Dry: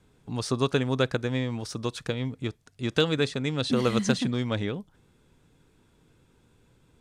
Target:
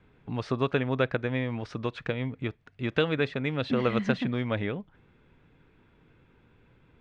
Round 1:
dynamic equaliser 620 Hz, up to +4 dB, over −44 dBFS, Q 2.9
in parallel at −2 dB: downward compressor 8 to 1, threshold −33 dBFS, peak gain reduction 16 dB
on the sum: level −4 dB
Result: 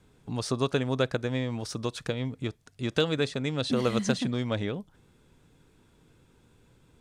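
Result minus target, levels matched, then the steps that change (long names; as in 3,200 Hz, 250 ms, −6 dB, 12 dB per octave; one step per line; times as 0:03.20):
2,000 Hz band −3.0 dB
add after dynamic equaliser: low-pass with resonance 2,300 Hz, resonance Q 1.6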